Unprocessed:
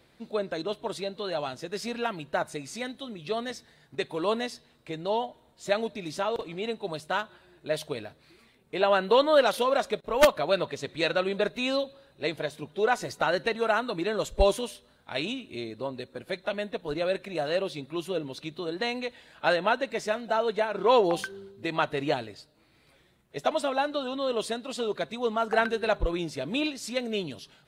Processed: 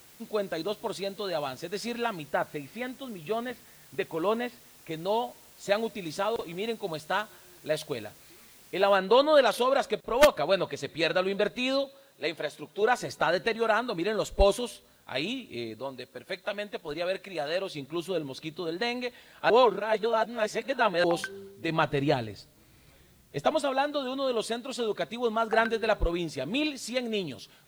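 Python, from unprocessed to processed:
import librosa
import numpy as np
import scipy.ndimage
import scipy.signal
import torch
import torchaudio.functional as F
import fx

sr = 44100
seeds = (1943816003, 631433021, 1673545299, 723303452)

y = fx.lowpass(x, sr, hz=3100.0, slope=24, at=(2.31, 4.91))
y = fx.noise_floor_step(y, sr, seeds[0], at_s=8.96, before_db=-55, after_db=-65, tilt_db=0.0)
y = fx.highpass(y, sr, hz=300.0, slope=6, at=(11.85, 12.82))
y = fx.low_shelf(y, sr, hz=480.0, db=-6.5, at=(15.79, 17.75))
y = fx.low_shelf(y, sr, hz=190.0, db=11.0, at=(21.68, 23.6))
y = fx.edit(y, sr, fx.reverse_span(start_s=19.5, length_s=1.54), tone=tone)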